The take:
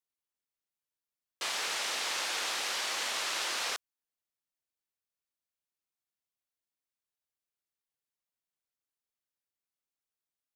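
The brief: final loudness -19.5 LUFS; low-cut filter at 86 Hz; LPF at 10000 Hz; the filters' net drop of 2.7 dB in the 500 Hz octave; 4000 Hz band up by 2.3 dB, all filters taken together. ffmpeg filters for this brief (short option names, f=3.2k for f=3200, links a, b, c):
-af "highpass=86,lowpass=10k,equalizer=f=500:t=o:g=-3.5,equalizer=f=4k:t=o:g=3,volume=11.5dB"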